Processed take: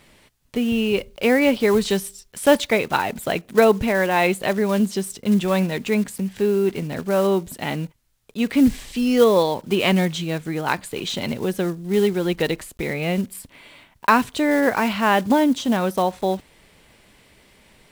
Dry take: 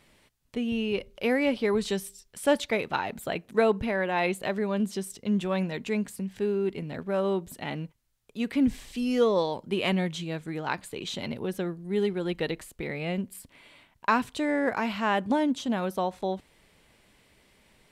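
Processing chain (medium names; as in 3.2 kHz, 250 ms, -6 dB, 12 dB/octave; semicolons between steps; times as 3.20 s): block-companded coder 5-bit; trim +8 dB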